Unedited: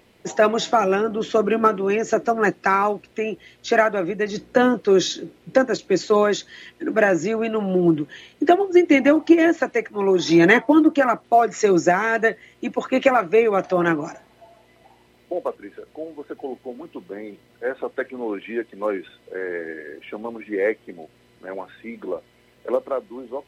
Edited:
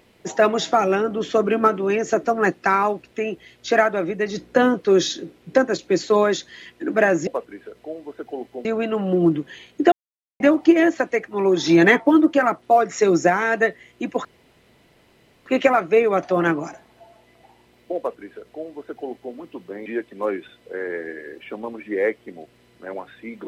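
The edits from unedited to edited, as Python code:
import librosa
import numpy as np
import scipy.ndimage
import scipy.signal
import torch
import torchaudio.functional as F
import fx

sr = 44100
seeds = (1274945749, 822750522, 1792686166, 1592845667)

y = fx.edit(x, sr, fx.silence(start_s=8.54, length_s=0.48),
    fx.insert_room_tone(at_s=12.87, length_s=1.21),
    fx.duplicate(start_s=15.38, length_s=1.38, to_s=7.27),
    fx.cut(start_s=17.27, length_s=1.2), tone=tone)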